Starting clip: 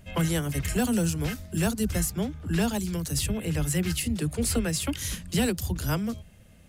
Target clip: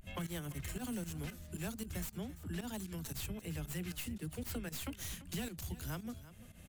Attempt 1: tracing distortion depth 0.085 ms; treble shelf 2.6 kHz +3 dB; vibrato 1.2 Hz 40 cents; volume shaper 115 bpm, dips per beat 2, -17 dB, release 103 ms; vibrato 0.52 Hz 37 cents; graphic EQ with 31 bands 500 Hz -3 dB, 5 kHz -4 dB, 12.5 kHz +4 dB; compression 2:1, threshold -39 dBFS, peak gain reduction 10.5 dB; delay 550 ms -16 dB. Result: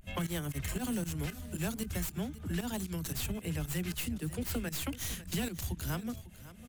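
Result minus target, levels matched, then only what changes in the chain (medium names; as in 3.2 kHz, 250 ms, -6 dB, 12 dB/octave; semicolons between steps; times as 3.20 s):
echo 209 ms late; compression: peak gain reduction -6 dB
change: compression 2:1, threshold -51 dBFS, peak gain reduction 16.5 dB; change: delay 341 ms -16 dB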